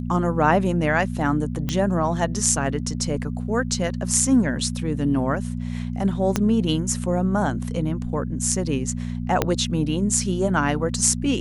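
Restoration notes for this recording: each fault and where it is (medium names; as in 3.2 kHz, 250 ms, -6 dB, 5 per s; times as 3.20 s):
hum 60 Hz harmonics 4 -28 dBFS
1.69 s: pop -11 dBFS
6.36 s: pop -6 dBFS
9.42 s: pop -4 dBFS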